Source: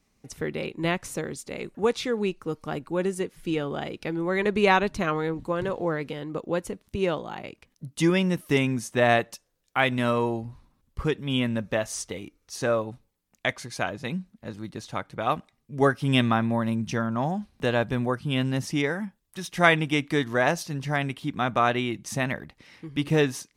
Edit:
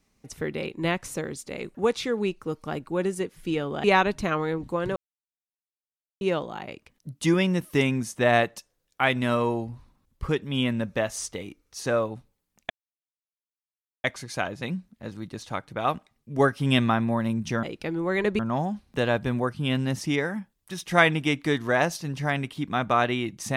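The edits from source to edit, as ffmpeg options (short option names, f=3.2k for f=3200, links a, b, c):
-filter_complex "[0:a]asplit=7[a][b][c][d][e][f][g];[a]atrim=end=3.842[h];[b]atrim=start=4.598:end=5.72,asetpts=PTS-STARTPTS,afade=t=out:st=1.118:d=0.004:c=hsin[i];[c]atrim=start=5.72:end=6.97,asetpts=PTS-STARTPTS,volume=0[j];[d]atrim=start=6.97:end=13.46,asetpts=PTS-STARTPTS,afade=t=in:d=0.004:c=hsin,afade=t=out:st=6.486:d=0.004:c=hsin,apad=pad_dur=1.34[k];[e]atrim=start=13.46:end=17.052,asetpts=PTS-STARTPTS,afade=t=in:d=0.004:c=hsin[l];[f]atrim=start=3.838:end=4.602[m];[g]atrim=start=17.048[n];[i][j][k][l]concat=n=4:v=0:a=1[o];[h][o]acrossfade=d=0.004:c1=hsin:c2=hsin[p];[p][m]acrossfade=d=0.004:c1=hsin:c2=hsin[q];[q][n]acrossfade=d=0.004:c1=hsin:c2=hsin"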